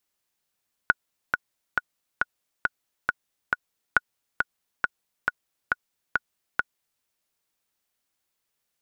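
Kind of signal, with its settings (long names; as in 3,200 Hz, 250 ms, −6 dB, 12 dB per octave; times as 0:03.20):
click track 137 BPM, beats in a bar 7, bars 2, 1,460 Hz, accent 4.5 dB −4 dBFS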